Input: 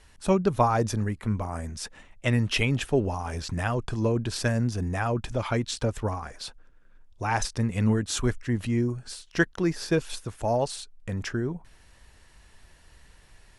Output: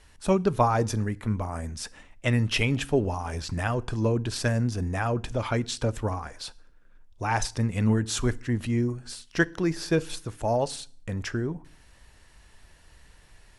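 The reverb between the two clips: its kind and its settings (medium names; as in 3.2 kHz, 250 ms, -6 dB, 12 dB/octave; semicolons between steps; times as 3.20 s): FDN reverb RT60 0.49 s, low-frequency decay 1.4×, high-frequency decay 0.95×, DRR 18 dB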